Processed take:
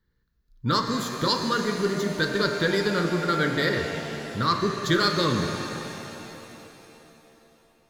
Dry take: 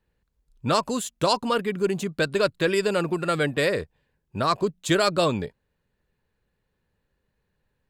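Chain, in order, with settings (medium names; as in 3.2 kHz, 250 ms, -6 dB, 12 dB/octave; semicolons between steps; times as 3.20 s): static phaser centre 2.6 kHz, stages 6; de-hum 47.14 Hz, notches 39; pitch-shifted reverb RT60 3.4 s, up +7 st, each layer -8 dB, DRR 4.5 dB; trim +2.5 dB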